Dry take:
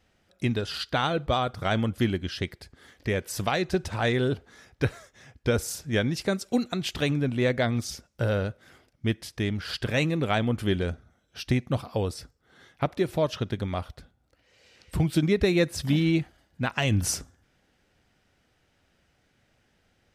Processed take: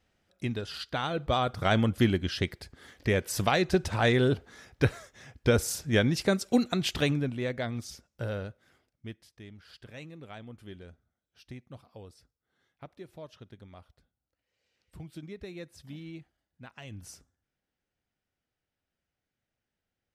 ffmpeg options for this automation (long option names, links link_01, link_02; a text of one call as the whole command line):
ffmpeg -i in.wav -af "volume=1dB,afade=type=in:start_time=1.06:duration=0.57:silence=0.446684,afade=type=out:start_time=6.93:duration=0.46:silence=0.354813,afade=type=out:start_time=8.28:duration=1.04:silence=0.251189" out.wav